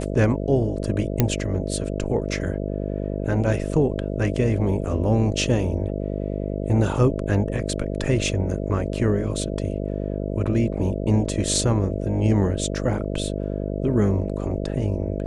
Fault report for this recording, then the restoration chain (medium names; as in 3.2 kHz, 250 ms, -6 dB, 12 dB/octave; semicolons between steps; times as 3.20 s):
buzz 50 Hz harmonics 13 -27 dBFS
1.20 s: pop -4 dBFS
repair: de-click; de-hum 50 Hz, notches 13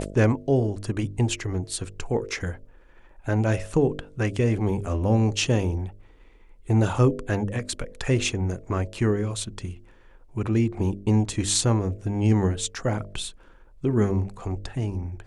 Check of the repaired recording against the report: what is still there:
nothing left